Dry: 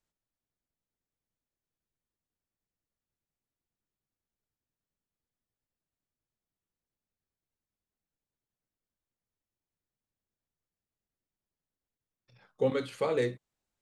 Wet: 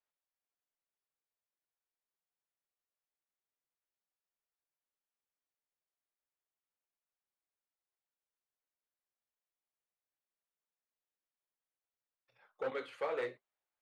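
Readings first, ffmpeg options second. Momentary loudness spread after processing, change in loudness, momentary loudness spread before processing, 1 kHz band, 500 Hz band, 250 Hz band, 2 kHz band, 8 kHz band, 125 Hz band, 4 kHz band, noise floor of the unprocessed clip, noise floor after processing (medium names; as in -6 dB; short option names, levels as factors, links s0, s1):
5 LU, -8.5 dB, 5 LU, -4.0 dB, -8.5 dB, -16.5 dB, -3.5 dB, no reading, -23.5 dB, -9.0 dB, under -85 dBFS, under -85 dBFS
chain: -filter_complex "[0:a]volume=17.8,asoftclip=hard,volume=0.0562,acrossover=split=440 3100:gain=0.0891 1 0.2[s0][s1][s2];[s0][s1][s2]amix=inputs=3:normalize=0,flanger=delay=4.8:depth=9.3:regen=-62:speed=0.96:shape=sinusoidal,volume=1.19"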